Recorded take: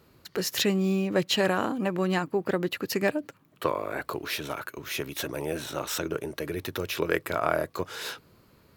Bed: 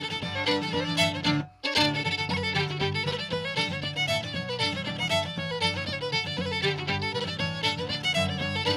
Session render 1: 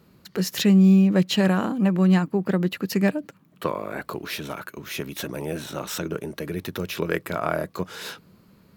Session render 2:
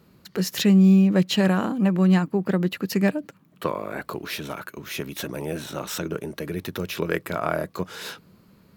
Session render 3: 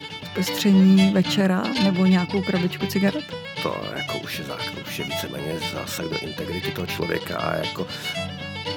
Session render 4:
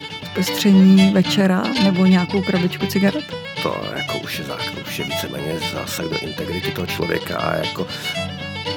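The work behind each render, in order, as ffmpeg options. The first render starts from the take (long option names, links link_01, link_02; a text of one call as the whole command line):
ffmpeg -i in.wav -af "equalizer=frequency=190:width_type=o:width=0.55:gain=12" out.wav
ffmpeg -i in.wav -af anull out.wav
ffmpeg -i in.wav -i bed.wav -filter_complex "[1:a]volume=-3dB[link_01];[0:a][link_01]amix=inputs=2:normalize=0" out.wav
ffmpeg -i in.wav -af "volume=4dB" out.wav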